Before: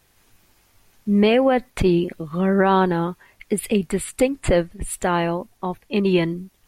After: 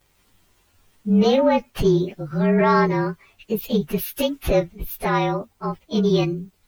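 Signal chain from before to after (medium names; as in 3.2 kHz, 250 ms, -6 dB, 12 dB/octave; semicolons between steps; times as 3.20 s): frequency axis rescaled in octaves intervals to 111%; 3.98–4.43 s: tilt shelf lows -4.5 dB, about 770 Hz; in parallel at -11.5 dB: saturation -18 dBFS, distortion -12 dB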